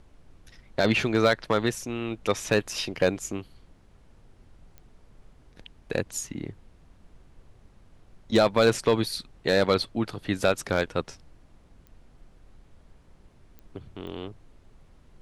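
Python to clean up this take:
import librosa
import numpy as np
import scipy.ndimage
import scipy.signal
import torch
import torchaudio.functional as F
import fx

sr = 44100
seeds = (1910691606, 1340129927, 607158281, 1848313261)

y = fx.fix_declip(x, sr, threshold_db=-11.5)
y = fx.fix_declick_ar(y, sr, threshold=10.0)
y = fx.noise_reduce(y, sr, print_start_s=3.73, print_end_s=4.23, reduce_db=15.0)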